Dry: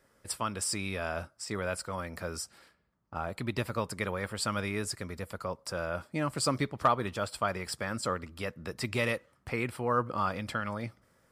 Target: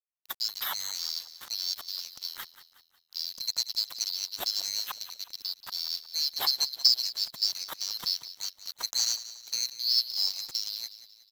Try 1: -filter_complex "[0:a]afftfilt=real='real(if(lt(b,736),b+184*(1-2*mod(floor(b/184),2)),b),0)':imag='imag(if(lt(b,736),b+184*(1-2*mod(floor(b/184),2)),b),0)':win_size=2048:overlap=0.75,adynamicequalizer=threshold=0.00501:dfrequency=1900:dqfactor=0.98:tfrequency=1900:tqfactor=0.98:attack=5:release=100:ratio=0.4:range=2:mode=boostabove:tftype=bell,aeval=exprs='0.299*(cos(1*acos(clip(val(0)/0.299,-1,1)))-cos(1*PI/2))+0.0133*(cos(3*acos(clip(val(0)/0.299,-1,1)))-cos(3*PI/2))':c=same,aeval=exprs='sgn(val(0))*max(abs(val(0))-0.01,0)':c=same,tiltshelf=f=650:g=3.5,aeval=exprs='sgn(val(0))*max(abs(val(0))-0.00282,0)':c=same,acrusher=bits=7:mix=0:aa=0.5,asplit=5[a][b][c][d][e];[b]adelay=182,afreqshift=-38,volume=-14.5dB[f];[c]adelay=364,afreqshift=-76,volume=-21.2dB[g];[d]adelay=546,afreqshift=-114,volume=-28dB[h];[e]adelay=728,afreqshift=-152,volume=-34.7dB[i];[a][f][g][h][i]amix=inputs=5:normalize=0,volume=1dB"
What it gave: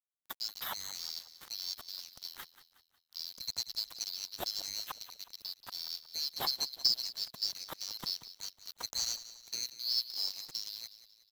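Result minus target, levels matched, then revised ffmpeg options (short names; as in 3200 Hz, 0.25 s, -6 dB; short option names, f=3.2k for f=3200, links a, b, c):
500 Hz band +7.0 dB
-filter_complex "[0:a]afftfilt=real='real(if(lt(b,736),b+184*(1-2*mod(floor(b/184),2)),b),0)':imag='imag(if(lt(b,736),b+184*(1-2*mod(floor(b/184),2)),b),0)':win_size=2048:overlap=0.75,adynamicequalizer=threshold=0.00501:dfrequency=1900:dqfactor=0.98:tfrequency=1900:tqfactor=0.98:attack=5:release=100:ratio=0.4:range=2:mode=boostabove:tftype=bell,aeval=exprs='0.299*(cos(1*acos(clip(val(0)/0.299,-1,1)))-cos(1*PI/2))+0.0133*(cos(3*acos(clip(val(0)/0.299,-1,1)))-cos(3*PI/2))':c=same,aeval=exprs='sgn(val(0))*max(abs(val(0))-0.01,0)':c=same,tiltshelf=f=650:g=-3.5,aeval=exprs='sgn(val(0))*max(abs(val(0))-0.00282,0)':c=same,acrusher=bits=7:mix=0:aa=0.5,asplit=5[a][b][c][d][e];[b]adelay=182,afreqshift=-38,volume=-14.5dB[f];[c]adelay=364,afreqshift=-76,volume=-21.2dB[g];[d]adelay=546,afreqshift=-114,volume=-28dB[h];[e]adelay=728,afreqshift=-152,volume=-34.7dB[i];[a][f][g][h][i]amix=inputs=5:normalize=0,volume=1dB"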